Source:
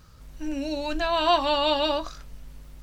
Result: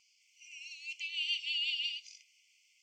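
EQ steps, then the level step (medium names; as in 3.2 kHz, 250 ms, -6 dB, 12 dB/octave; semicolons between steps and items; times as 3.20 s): brick-wall FIR high-pass 2 kHz; distance through air 60 m; static phaser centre 2.6 kHz, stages 8; 0.0 dB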